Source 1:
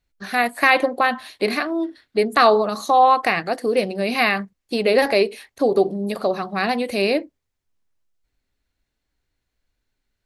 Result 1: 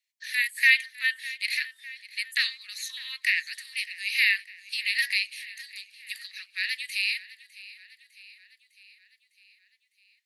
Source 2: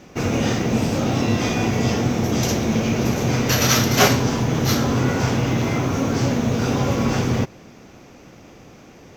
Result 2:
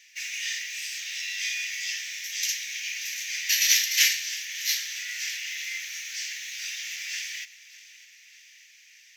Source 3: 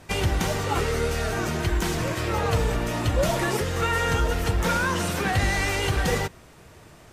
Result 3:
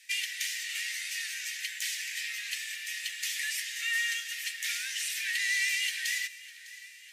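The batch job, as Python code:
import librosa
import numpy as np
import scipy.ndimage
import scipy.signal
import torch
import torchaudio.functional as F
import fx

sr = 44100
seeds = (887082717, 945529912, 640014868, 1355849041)

p1 = scipy.signal.sosfilt(scipy.signal.cheby1(6, 1.0, 1800.0, 'highpass', fs=sr, output='sos'), x)
y = p1 + fx.echo_feedback(p1, sr, ms=604, feedback_pct=59, wet_db=-18.5, dry=0)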